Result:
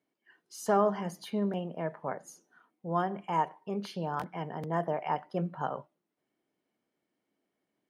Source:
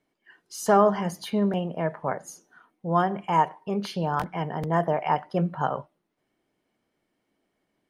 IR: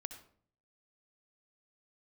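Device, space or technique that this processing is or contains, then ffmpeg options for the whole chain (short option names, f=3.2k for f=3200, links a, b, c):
filter by subtraction: -filter_complex "[0:a]asplit=2[a][b];[b]lowpass=240,volume=-1[c];[a][c]amix=inputs=2:normalize=0,volume=-8dB"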